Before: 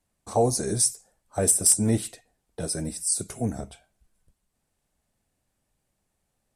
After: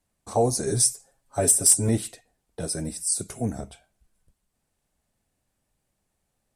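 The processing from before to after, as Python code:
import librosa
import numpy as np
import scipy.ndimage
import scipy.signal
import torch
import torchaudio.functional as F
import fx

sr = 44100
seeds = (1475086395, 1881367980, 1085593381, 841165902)

y = fx.comb(x, sr, ms=7.3, depth=0.72, at=(0.66, 1.89))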